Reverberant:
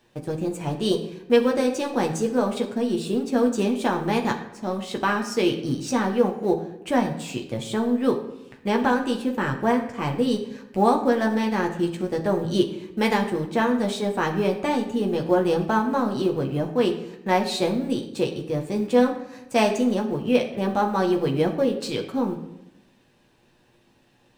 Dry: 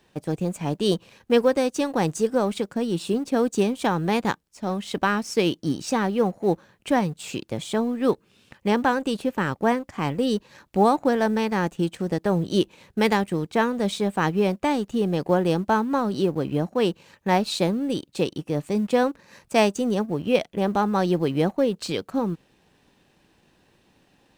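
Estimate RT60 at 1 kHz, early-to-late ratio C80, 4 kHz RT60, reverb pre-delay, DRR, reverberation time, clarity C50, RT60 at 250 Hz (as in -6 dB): 0.85 s, 12.0 dB, 0.60 s, 8 ms, 1.0 dB, 0.85 s, 9.5 dB, 1.1 s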